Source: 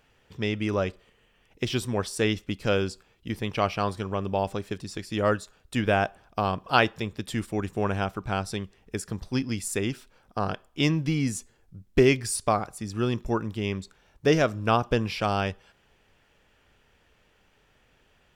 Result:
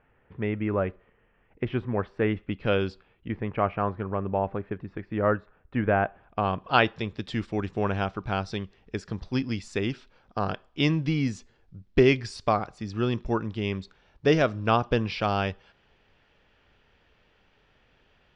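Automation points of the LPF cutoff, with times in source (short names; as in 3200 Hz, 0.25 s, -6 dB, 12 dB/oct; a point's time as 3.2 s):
LPF 24 dB/oct
2.3 s 2100 Hz
2.89 s 4100 Hz
3.44 s 2000 Hz
5.94 s 2000 Hz
7.02 s 5000 Hz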